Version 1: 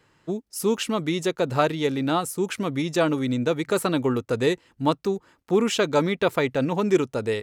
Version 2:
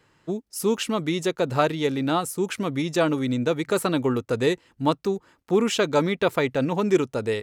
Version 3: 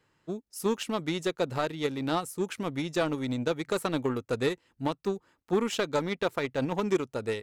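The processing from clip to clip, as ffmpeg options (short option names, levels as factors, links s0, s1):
-af anull
-af "aeval=exprs='0.422*(cos(1*acos(clip(val(0)/0.422,-1,1)))-cos(1*PI/2))+0.0376*(cos(3*acos(clip(val(0)/0.422,-1,1)))-cos(3*PI/2))+0.0188*(cos(7*acos(clip(val(0)/0.422,-1,1)))-cos(7*PI/2))':c=same,alimiter=limit=0.178:level=0:latency=1:release=198,volume=0.891"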